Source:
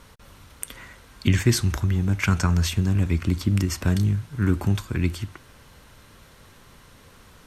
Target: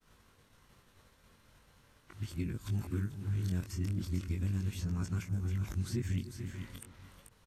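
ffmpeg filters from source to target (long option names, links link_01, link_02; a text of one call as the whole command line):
ffmpeg -i in.wav -filter_complex "[0:a]areverse,asplit=2[link_01][link_02];[link_02]aecho=0:1:436:0.178[link_03];[link_01][link_03]amix=inputs=2:normalize=0,flanger=delay=18.5:depth=4.4:speed=0.39,asplit=2[link_04][link_05];[link_05]adelay=293,lowpass=frequency=2000:poles=1,volume=-16dB,asplit=2[link_06][link_07];[link_07]adelay=293,lowpass=frequency=2000:poles=1,volume=0.37,asplit=2[link_08][link_09];[link_09]adelay=293,lowpass=frequency=2000:poles=1,volume=0.37[link_10];[link_06][link_08][link_10]amix=inputs=3:normalize=0[link_11];[link_04][link_11]amix=inputs=2:normalize=0,agate=range=-33dB:threshold=-47dB:ratio=3:detection=peak,acrossover=split=410|1100|5800[link_12][link_13][link_14][link_15];[link_12]acompressor=threshold=-25dB:ratio=4[link_16];[link_13]acompressor=threshold=-56dB:ratio=4[link_17];[link_14]acompressor=threshold=-48dB:ratio=4[link_18];[link_15]acompressor=threshold=-47dB:ratio=4[link_19];[link_16][link_17][link_18][link_19]amix=inputs=4:normalize=0,volume=-6dB" out.wav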